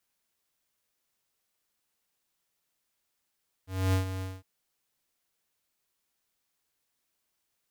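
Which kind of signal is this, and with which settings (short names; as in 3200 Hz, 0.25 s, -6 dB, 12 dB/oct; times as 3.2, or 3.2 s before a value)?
ADSR square 94.2 Hz, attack 0.263 s, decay 0.114 s, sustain -10.5 dB, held 0.55 s, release 0.207 s -24 dBFS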